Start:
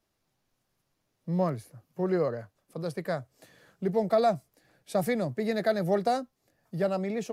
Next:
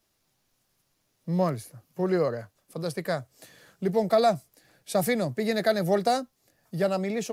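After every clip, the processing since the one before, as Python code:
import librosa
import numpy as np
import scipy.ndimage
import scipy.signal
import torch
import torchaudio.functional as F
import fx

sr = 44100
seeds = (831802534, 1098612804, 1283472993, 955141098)

y = fx.high_shelf(x, sr, hz=2800.0, db=7.5)
y = y * librosa.db_to_amplitude(2.0)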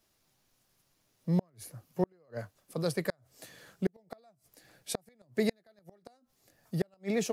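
y = fx.gate_flip(x, sr, shuts_db=-17.0, range_db=-40)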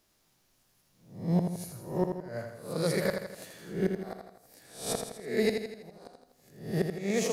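y = fx.spec_swells(x, sr, rise_s=0.49)
y = fx.echo_feedback(y, sr, ms=82, feedback_pct=52, wet_db=-6.0)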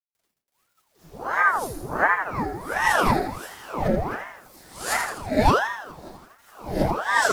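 y = fx.quant_dither(x, sr, seeds[0], bits=10, dither='none')
y = fx.room_shoebox(y, sr, seeds[1], volume_m3=130.0, walls='furnished', distance_m=4.8)
y = fx.ring_lfo(y, sr, carrier_hz=790.0, swing_pct=80, hz=1.4)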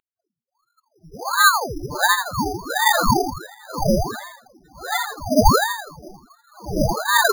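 y = x + 10.0 ** (-49.0 / 20.0) * np.sin(2.0 * np.pi * 5600.0 * np.arange(len(x)) / sr)
y = fx.spec_topn(y, sr, count=8)
y = np.repeat(scipy.signal.resample_poly(y, 1, 8), 8)[:len(y)]
y = y * librosa.db_to_amplitude(6.5)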